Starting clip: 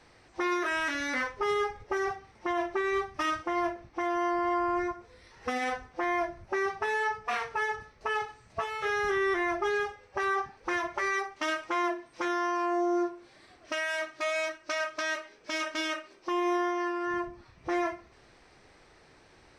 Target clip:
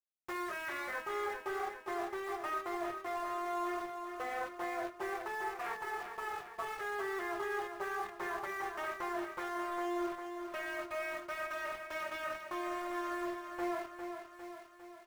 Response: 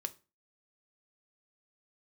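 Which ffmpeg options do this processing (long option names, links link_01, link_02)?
-filter_complex "[0:a]highpass=frequency=420:width=0.5412,highpass=frequency=420:width=1.3066,highshelf=frequency=5200:gain=-8.5,areverse,acompressor=threshold=-43dB:ratio=5,areverse,acrusher=bits=7:mix=0:aa=0.000001,acrossover=split=3000[link_01][link_02];[link_01]acontrast=50[link_03];[link_03][link_02]amix=inputs=2:normalize=0,atempo=1.3,aecho=1:1:403|806|1209|1612|2015|2418|2821:0.422|0.24|0.137|0.0781|0.0445|0.0254|0.0145[link_04];[1:a]atrim=start_sample=2205[link_05];[link_04][link_05]afir=irnorm=-1:irlink=0,adynamicequalizer=threshold=0.00178:dfrequency=2700:dqfactor=0.7:tfrequency=2700:tqfactor=0.7:attack=5:release=100:ratio=0.375:range=2.5:mode=cutabove:tftype=highshelf"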